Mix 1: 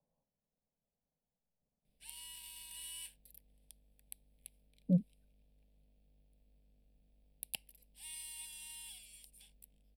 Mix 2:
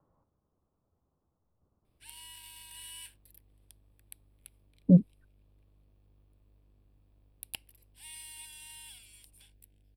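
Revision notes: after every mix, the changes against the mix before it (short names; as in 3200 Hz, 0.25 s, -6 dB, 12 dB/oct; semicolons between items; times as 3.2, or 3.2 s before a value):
speech +10.0 dB; master: remove fixed phaser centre 340 Hz, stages 6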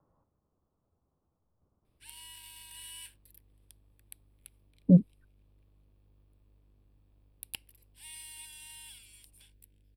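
background: add bell 700 Hz -12 dB 0.24 oct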